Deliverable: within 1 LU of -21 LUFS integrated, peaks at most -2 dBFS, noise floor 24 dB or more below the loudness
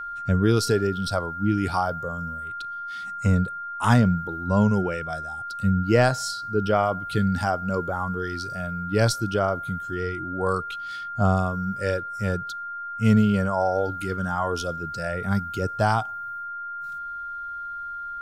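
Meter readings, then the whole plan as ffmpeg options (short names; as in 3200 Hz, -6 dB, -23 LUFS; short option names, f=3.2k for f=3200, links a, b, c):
steady tone 1400 Hz; tone level -31 dBFS; loudness -25.0 LUFS; peak -7.5 dBFS; loudness target -21.0 LUFS
-> -af "bandreject=f=1.4k:w=30"
-af "volume=4dB"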